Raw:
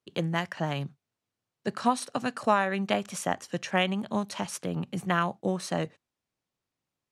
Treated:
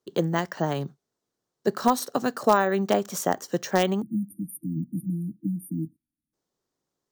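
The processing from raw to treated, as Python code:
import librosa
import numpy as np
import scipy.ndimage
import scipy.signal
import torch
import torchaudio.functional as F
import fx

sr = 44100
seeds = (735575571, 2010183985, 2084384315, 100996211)

p1 = fx.spec_erase(x, sr, start_s=4.02, length_s=2.31, low_hz=340.0, high_hz=9000.0)
p2 = (np.mod(10.0 ** (11.5 / 20.0) * p1 + 1.0, 2.0) - 1.0) / 10.0 ** (11.5 / 20.0)
p3 = p1 + (p2 * 10.0 ** (-11.5 / 20.0))
p4 = np.repeat(scipy.signal.resample_poly(p3, 1, 2), 2)[:len(p3)]
p5 = fx.graphic_eq_15(p4, sr, hz=(100, 400, 2500, 6300), db=(-8, 7, -10, 4))
y = p5 * 10.0 ** (1.5 / 20.0)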